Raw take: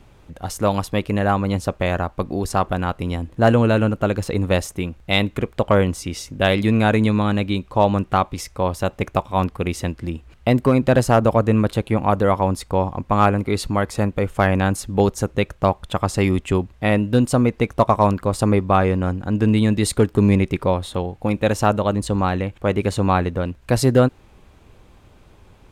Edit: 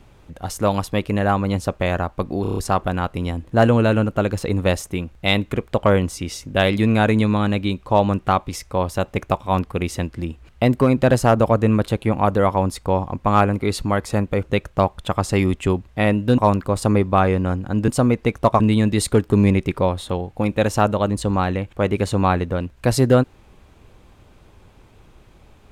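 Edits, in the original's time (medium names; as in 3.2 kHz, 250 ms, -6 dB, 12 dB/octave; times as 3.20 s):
2.42 s: stutter 0.03 s, 6 plays
14.28–15.28 s: delete
17.23–17.95 s: move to 19.45 s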